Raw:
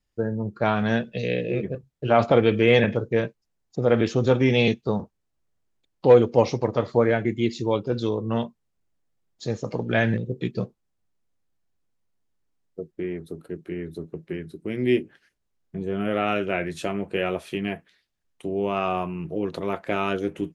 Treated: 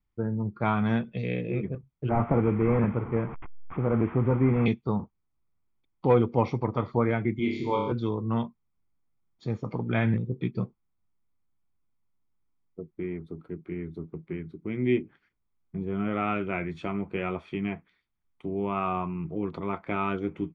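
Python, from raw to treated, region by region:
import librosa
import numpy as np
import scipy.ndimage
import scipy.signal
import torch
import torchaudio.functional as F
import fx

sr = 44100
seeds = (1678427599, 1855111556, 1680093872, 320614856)

y = fx.chain(x, sr, fx.delta_mod(bps=16000, step_db=-28.5),
    fx.lowpass(hz=1600.0, slope=12), at=(2.09, 4.66))
y = fx.chain(y, sr, fx.highpass(hz=230.0, slope=6),
    fx.room_flutter(wall_m=5.0, rt60_s=0.81), at=(7.39, 7.92))
y = scipy.signal.sosfilt(scipy.signal.butter(2, 2300.0, 'lowpass', fs=sr, output='sos'), y)
y = y + 0.52 * np.pad(y, (int(0.9 * sr / 1000.0), 0))[:len(y)]
y = F.gain(torch.from_numpy(y), -3.5).numpy()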